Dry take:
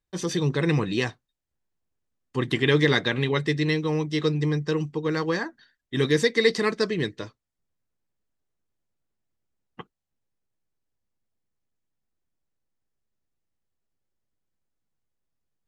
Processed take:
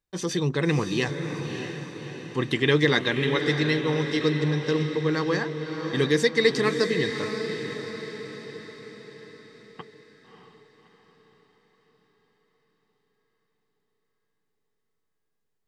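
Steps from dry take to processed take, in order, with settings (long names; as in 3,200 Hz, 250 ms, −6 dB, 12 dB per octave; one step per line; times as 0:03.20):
low-shelf EQ 110 Hz −4.5 dB
on a send: feedback delay with all-pass diffusion 611 ms, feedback 53%, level −7 dB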